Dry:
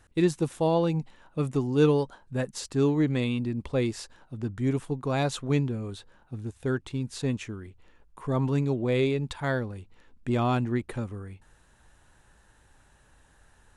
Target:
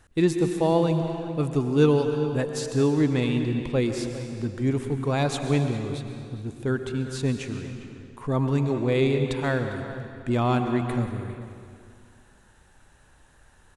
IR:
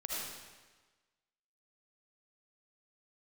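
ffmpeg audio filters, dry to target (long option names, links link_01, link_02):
-filter_complex "[0:a]asplit=2[link_01][link_02];[link_02]adelay=402.3,volume=-14dB,highshelf=frequency=4000:gain=-9.05[link_03];[link_01][link_03]amix=inputs=2:normalize=0,asplit=2[link_04][link_05];[1:a]atrim=start_sample=2205,asetrate=25137,aresample=44100[link_06];[link_05][link_06]afir=irnorm=-1:irlink=0,volume=-10.5dB[link_07];[link_04][link_07]amix=inputs=2:normalize=0"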